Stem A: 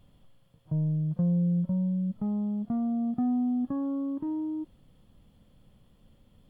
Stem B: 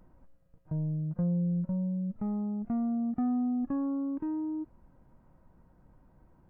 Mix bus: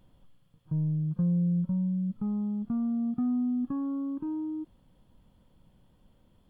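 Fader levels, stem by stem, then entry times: -4.0, -7.0 dB; 0.00, 0.00 s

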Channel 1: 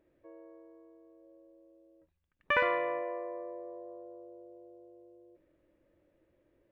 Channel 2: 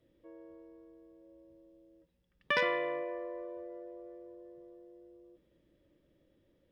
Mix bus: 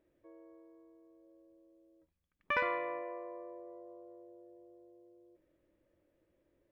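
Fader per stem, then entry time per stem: -4.5, -16.0 dB; 0.00, 0.00 s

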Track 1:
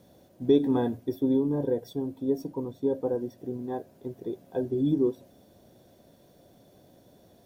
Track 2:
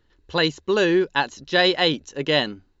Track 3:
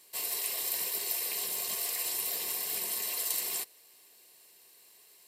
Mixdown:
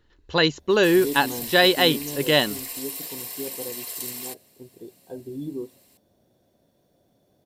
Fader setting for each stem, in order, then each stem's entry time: -8.0, +1.0, -1.0 dB; 0.55, 0.00, 0.70 s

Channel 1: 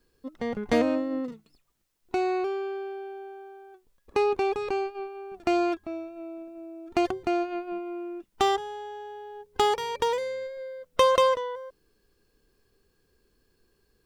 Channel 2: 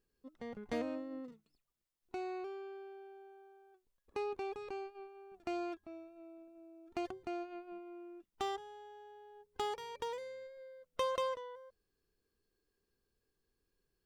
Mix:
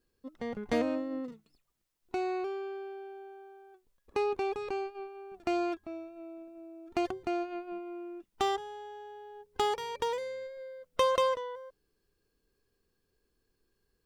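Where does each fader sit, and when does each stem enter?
-10.5, 0.0 dB; 0.00, 0.00 s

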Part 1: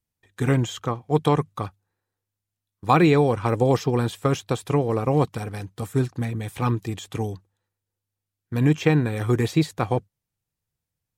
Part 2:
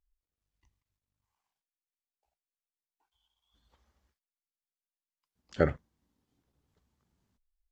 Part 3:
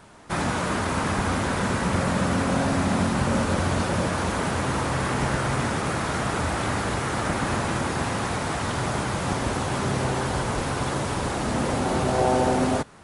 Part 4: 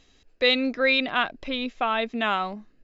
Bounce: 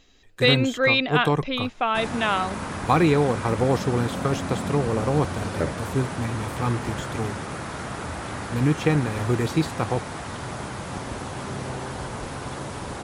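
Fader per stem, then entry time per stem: -2.0, -1.0, -6.5, +1.5 dB; 0.00, 0.00, 1.65, 0.00 s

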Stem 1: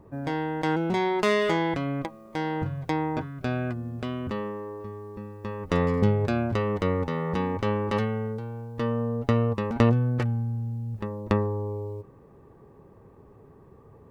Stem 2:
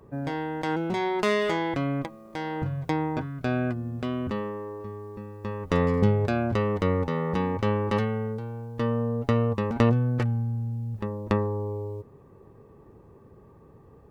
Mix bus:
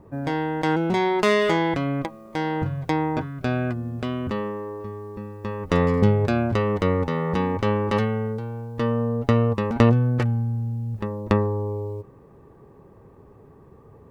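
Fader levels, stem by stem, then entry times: +2.5, -13.0 dB; 0.00, 0.00 s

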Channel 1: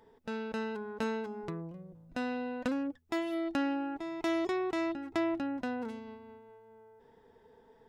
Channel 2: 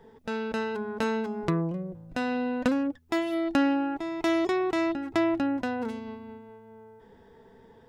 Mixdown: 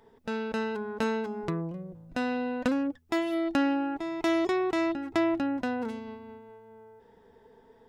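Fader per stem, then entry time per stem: +2.0, -11.0 dB; 0.00, 0.00 s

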